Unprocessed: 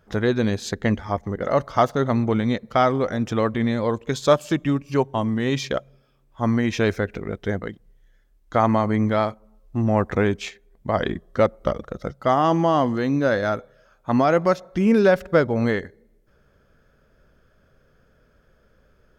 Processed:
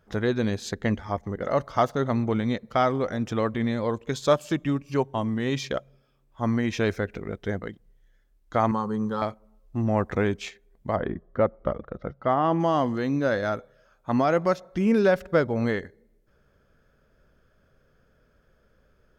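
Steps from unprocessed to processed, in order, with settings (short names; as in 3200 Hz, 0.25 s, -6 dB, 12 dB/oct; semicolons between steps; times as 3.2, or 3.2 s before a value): 8.71–9.22 fixed phaser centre 430 Hz, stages 8; 10.95–12.59 LPF 1400 Hz -> 2700 Hz 12 dB/oct; gain -4 dB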